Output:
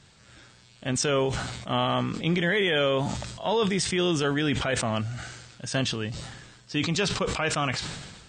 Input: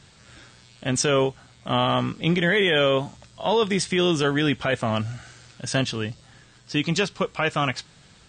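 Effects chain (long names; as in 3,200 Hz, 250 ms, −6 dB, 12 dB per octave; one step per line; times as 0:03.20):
level that may fall only so fast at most 43 dB per second
level −4 dB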